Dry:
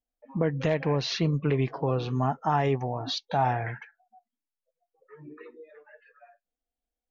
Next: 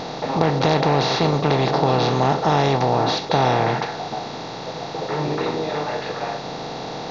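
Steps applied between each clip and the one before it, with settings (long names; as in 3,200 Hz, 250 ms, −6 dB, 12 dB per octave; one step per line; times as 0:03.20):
compressor on every frequency bin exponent 0.2
level +1 dB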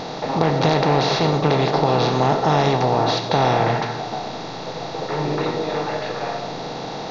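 convolution reverb RT60 0.85 s, pre-delay 50 ms, DRR 9 dB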